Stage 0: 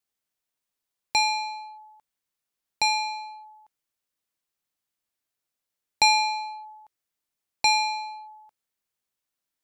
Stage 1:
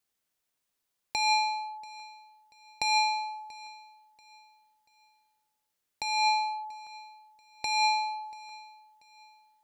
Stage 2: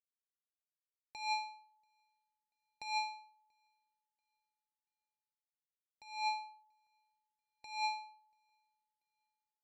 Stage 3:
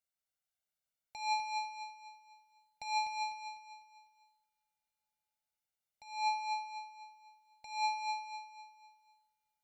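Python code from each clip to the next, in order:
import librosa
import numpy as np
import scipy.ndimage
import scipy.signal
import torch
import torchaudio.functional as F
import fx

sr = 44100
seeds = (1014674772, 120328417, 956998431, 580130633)

y1 = fx.over_compress(x, sr, threshold_db=-26.0, ratio=-1.0)
y1 = fx.echo_feedback(y1, sr, ms=686, feedback_pct=35, wet_db=-21)
y2 = fx.high_shelf(y1, sr, hz=5800.0, db=-7.5)
y2 = fx.upward_expand(y2, sr, threshold_db=-39.0, expansion=2.5)
y2 = F.gain(torch.from_numpy(y2), -8.5).numpy()
y3 = y2 + 0.74 * np.pad(y2, (int(1.4 * sr / 1000.0), 0))[:len(y2)]
y3 = fx.echo_feedback(y3, sr, ms=250, feedback_pct=40, wet_db=-4.0)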